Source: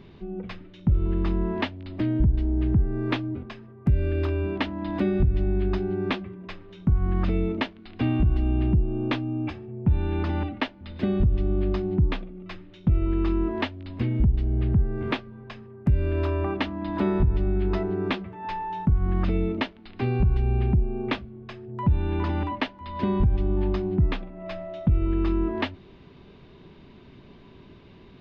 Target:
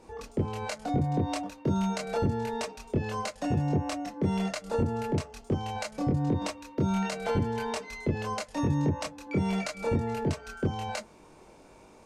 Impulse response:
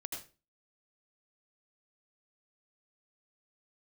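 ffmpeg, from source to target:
-filter_complex "[1:a]atrim=start_sample=2205,asetrate=70560,aresample=44100[link_01];[0:a][link_01]afir=irnorm=-1:irlink=0,asetrate=103194,aresample=44100"

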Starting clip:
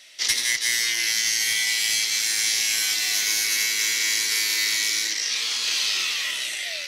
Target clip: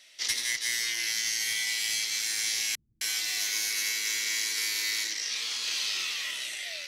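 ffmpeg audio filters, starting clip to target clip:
ffmpeg -i in.wav -filter_complex "[0:a]asettb=1/sr,asplit=3[link_01][link_02][link_03];[link_01]atrim=end=2.754[link_04];[link_02]atrim=start=2.75:end=5.04,asetpts=PTS-STARTPTS,afade=type=in:duration=0.004:curve=qsin,afade=type=out:start_time=2.286:duration=0.004:curve=qsin,acrossover=split=160[link_05][link_06];[link_06]adelay=260[link_07];[link_05][link_07]amix=inputs=2:normalize=0,atrim=end_sample=100989[link_08];[link_03]atrim=start=5.036[link_09];[link_04][link_08]acrossfade=duration=0.004:curve1=hsin:curve2=qsin[link_10];[link_10][link_09]acrossfade=duration=0.004:curve1=qsin:curve2=hsin,volume=-7dB" out.wav

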